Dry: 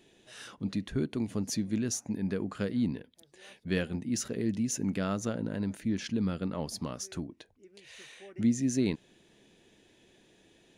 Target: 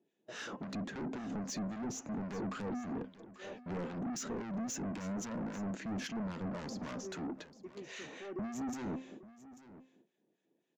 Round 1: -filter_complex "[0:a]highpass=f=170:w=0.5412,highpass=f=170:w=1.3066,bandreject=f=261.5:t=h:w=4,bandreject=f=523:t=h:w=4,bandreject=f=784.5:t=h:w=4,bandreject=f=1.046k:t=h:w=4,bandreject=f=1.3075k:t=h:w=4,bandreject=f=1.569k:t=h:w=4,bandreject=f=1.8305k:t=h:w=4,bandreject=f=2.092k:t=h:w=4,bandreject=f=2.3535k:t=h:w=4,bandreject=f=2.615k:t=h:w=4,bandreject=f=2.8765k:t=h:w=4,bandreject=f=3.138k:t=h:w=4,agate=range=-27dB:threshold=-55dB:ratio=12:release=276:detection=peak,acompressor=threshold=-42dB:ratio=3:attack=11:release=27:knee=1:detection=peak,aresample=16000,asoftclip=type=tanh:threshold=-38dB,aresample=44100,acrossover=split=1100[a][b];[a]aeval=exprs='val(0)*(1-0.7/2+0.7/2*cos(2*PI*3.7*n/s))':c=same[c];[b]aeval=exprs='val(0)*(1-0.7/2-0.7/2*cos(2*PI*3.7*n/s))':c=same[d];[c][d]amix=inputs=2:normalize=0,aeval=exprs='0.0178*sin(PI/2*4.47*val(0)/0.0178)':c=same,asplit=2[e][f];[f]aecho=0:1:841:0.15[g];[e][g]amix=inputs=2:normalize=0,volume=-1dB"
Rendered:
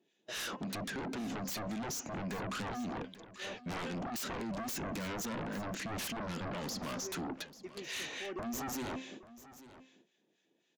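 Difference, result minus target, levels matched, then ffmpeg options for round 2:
4000 Hz band +6.5 dB; soft clip: distortion -6 dB
-filter_complex "[0:a]highpass=f=170:w=0.5412,highpass=f=170:w=1.3066,bandreject=f=261.5:t=h:w=4,bandreject=f=523:t=h:w=4,bandreject=f=784.5:t=h:w=4,bandreject=f=1.046k:t=h:w=4,bandreject=f=1.3075k:t=h:w=4,bandreject=f=1.569k:t=h:w=4,bandreject=f=1.8305k:t=h:w=4,bandreject=f=2.092k:t=h:w=4,bandreject=f=2.3535k:t=h:w=4,bandreject=f=2.615k:t=h:w=4,bandreject=f=2.8765k:t=h:w=4,bandreject=f=3.138k:t=h:w=4,agate=range=-27dB:threshold=-55dB:ratio=12:release=276:detection=peak,acompressor=threshold=-42dB:ratio=3:attack=11:release=27:knee=1:detection=peak,equalizer=f=4.2k:w=0.39:g=-13.5,aresample=16000,asoftclip=type=tanh:threshold=-48dB,aresample=44100,acrossover=split=1100[a][b];[a]aeval=exprs='val(0)*(1-0.7/2+0.7/2*cos(2*PI*3.7*n/s))':c=same[c];[b]aeval=exprs='val(0)*(1-0.7/2-0.7/2*cos(2*PI*3.7*n/s))':c=same[d];[c][d]amix=inputs=2:normalize=0,aeval=exprs='0.0178*sin(PI/2*4.47*val(0)/0.0178)':c=same,asplit=2[e][f];[f]aecho=0:1:841:0.15[g];[e][g]amix=inputs=2:normalize=0,volume=-1dB"

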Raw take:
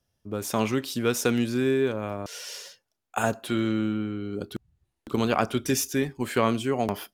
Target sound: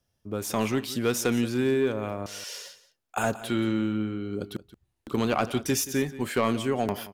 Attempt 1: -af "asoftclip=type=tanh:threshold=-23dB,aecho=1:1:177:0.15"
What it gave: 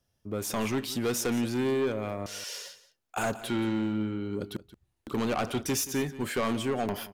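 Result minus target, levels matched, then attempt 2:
soft clip: distortion +10 dB
-af "asoftclip=type=tanh:threshold=-13.5dB,aecho=1:1:177:0.15"

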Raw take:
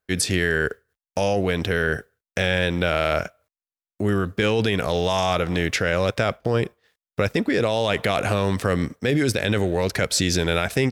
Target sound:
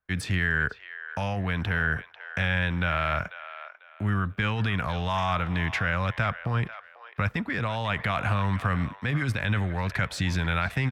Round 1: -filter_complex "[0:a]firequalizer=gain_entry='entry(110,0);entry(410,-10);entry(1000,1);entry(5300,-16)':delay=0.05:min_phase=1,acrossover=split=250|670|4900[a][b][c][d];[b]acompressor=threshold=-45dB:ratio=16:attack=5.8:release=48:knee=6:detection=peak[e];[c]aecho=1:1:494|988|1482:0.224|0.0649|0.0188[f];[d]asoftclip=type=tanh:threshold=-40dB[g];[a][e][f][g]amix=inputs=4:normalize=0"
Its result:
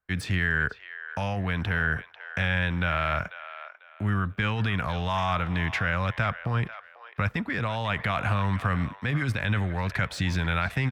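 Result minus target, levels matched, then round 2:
soft clip: distortion +10 dB
-filter_complex "[0:a]firequalizer=gain_entry='entry(110,0);entry(410,-10);entry(1000,1);entry(5300,-16)':delay=0.05:min_phase=1,acrossover=split=250|670|4900[a][b][c][d];[b]acompressor=threshold=-45dB:ratio=16:attack=5.8:release=48:knee=6:detection=peak[e];[c]aecho=1:1:494|988|1482:0.224|0.0649|0.0188[f];[d]asoftclip=type=tanh:threshold=-31.5dB[g];[a][e][f][g]amix=inputs=4:normalize=0"

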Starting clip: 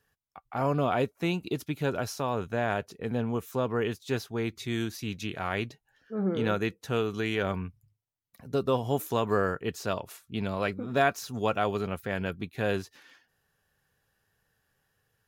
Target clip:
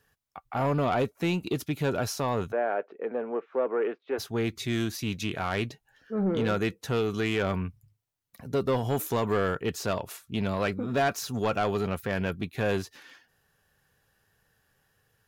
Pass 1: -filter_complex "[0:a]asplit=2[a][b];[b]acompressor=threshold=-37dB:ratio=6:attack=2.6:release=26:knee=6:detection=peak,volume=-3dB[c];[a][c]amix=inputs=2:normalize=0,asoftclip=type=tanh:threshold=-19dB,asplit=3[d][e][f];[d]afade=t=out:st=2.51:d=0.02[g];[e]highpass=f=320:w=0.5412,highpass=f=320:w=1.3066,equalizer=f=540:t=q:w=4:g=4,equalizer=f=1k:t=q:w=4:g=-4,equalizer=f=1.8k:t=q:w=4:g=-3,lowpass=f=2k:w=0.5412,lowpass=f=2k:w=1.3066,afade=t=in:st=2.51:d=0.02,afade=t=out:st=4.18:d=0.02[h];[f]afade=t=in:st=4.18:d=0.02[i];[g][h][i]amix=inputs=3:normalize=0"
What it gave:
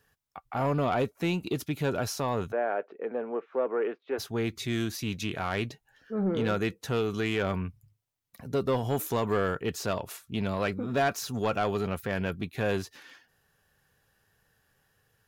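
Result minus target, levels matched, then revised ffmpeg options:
compressor: peak gain reduction +7.5 dB
-filter_complex "[0:a]asplit=2[a][b];[b]acompressor=threshold=-28dB:ratio=6:attack=2.6:release=26:knee=6:detection=peak,volume=-3dB[c];[a][c]amix=inputs=2:normalize=0,asoftclip=type=tanh:threshold=-19dB,asplit=3[d][e][f];[d]afade=t=out:st=2.51:d=0.02[g];[e]highpass=f=320:w=0.5412,highpass=f=320:w=1.3066,equalizer=f=540:t=q:w=4:g=4,equalizer=f=1k:t=q:w=4:g=-4,equalizer=f=1.8k:t=q:w=4:g=-3,lowpass=f=2k:w=0.5412,lowpass=f=2k:w=1.3066,afade=t=in:st=2.51:d=0.02,afade=t=out:st=4.18:d=0.02[h];[f]afade=t=in:st=4.18:d=0.02[i];[g][h][i]amix=inputs=3:normalize=0"

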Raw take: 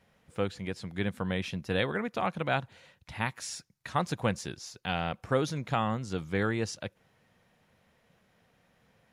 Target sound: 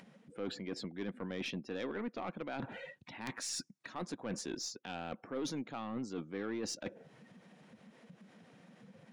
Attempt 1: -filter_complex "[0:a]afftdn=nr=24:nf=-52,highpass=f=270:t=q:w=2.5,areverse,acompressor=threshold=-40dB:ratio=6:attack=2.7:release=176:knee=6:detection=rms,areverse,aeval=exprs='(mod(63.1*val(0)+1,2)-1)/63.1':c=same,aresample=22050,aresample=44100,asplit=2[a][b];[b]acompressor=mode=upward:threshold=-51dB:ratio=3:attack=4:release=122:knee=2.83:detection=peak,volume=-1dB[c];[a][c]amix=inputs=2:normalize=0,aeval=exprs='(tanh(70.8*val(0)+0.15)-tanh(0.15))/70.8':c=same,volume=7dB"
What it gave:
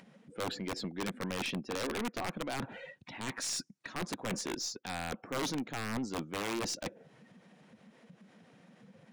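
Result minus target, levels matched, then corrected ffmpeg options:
compressor: peak gain reduction -6 dB
-filter_complex "[0:a]afftdn=nr=24:nf=-52,highpass=f=270:t=q:w=2.5,areverse,acompressor=threshold=-47dB:ratio=6:attack=2.7:release=176:knee=6:detection=rms,areverse,aeval=exprs='(mod(63.1*val(0)+1,2)-1)/63.1':c=same,aresample=22050,aresample=44100,asplit=2[a][b];[b]acompressor=mode=upward:threshold=-51dB:ratio=3:attack=4:release=122:knee=2.83:detection=peak,volume=-1dB[c];[a][c]amix=inputs=2:normalize=0,aeval=exprs='(tanh(70.8*val(0)+0.15)-tanh(0.15))/70.8':c=same,volume=7dB"

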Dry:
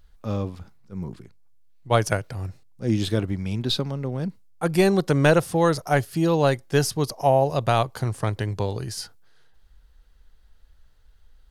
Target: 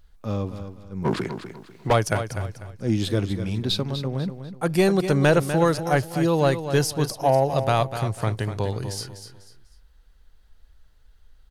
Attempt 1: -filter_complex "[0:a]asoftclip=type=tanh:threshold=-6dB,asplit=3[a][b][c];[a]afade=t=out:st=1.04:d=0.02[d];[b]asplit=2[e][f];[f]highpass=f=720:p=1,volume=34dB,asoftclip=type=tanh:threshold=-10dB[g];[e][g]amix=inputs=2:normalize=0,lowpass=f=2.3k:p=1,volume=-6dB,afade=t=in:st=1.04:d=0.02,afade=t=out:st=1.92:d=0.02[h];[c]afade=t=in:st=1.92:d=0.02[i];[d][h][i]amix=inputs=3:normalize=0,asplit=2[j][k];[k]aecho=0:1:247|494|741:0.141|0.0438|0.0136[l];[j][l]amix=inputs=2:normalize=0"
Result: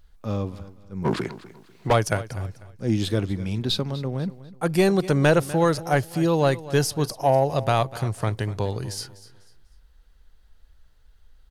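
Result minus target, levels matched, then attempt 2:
echo-to-direct -7 dB
-filter_complex "[0:a]asoftclip=type=tanh:threshold=-6dB,asplit=3[a][b][c];[a]afade=t=out:st=1.04:d=0.02[d];[b]asplit=2[e][f];[f]highpass=f=720:p=1,volume=34dB,asoftclip=type=tanh:threshold=-10dB[g];[e][g]amix=inputs=2:normalize=0,lowpass=f=2.3k:p=1,volume=-6dB,afade=t=in:st=1.04:d=0.02,afade=t=out:st=1.92:d=0.02[h];[c]afade=t=in:st=1.92:d=0.02[i];[d][h][i]amix=inputs=3:normalize=0,asplit=2[j][k];[k]aecho=0:1:247|494|741:0.316|0.098|0.0304[l];[j][l]amix=inputs=2:normalize=0"

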